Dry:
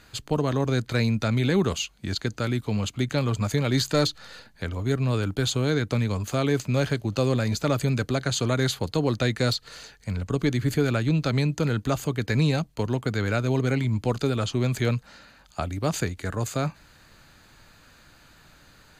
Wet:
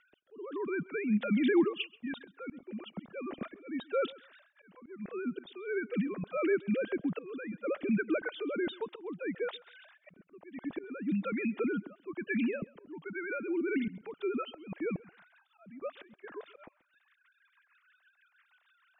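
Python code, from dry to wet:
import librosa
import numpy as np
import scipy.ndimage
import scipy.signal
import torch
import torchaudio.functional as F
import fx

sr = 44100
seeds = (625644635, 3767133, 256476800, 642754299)

y = fx.sine_speech(x, sr)
y = fx.dynamic_eq(y, sr, hz=730.0, q=0.97, threshold_db=-37.0, ratio=4.0, max_db=-6, at=(12.97, 14.53), fade=0.02)
y = fx.auto_swell(y, sr, attack_ms=515.0)
y = fx.rotary_switch(y, sr, hz=1.2, then_hz=6.3, switch_at_s=13.44)
y = fx.echo_feedback(y, sr, ms=133, feedback_pct=17, wet_db=-22.0)
y = y * 10.0 ** (-5.5 / 20.0)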